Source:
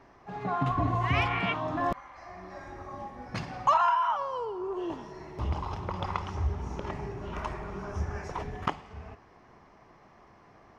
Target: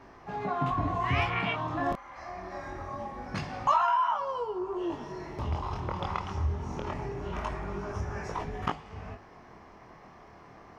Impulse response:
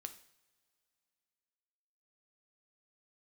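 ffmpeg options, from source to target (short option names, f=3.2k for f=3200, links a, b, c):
-filter_complex "[0:a]flanger=delay=18.5:depth=7:speed=0.24,asplit=2[a][b];[b]acompressor=threshold=-43dB:ratio=6,volume=3dB[c];[a][c]amix=inputs=2:normalize=0"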